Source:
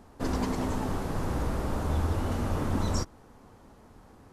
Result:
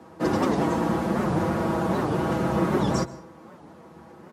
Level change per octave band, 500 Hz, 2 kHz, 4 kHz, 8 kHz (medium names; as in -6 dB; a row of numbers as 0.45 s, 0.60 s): +9.5 dB, +7.5 dB, +3.5 dB, +1.5 dB